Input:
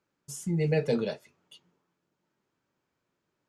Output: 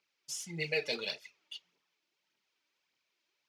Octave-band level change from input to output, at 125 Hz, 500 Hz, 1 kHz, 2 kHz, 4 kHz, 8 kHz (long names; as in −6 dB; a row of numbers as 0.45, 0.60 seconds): −17.0, −9.5, −8.0, +4.5, +7.5, +0.5 decibels